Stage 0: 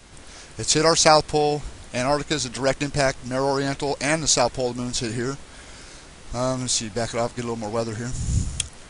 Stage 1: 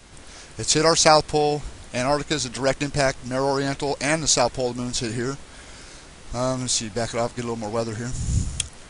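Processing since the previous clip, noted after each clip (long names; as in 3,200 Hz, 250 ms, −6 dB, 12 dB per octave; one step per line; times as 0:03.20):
no processing that can be heard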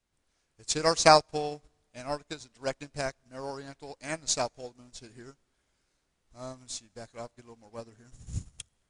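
four-comb reverb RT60 2.2 s, combs from 27 ms, DRR 19 dB
expander for the loud parts 2.5 to 1, over −33 dBFS
level −2 dB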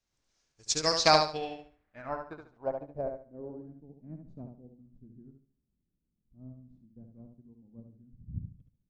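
low-pass filter sweep 6,000 Hz → 210 Hz, 0:00.77–0:03.94
on a send: repeating echo 71 ms, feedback 27%, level −5.5 dB
on the sum: level −5 dB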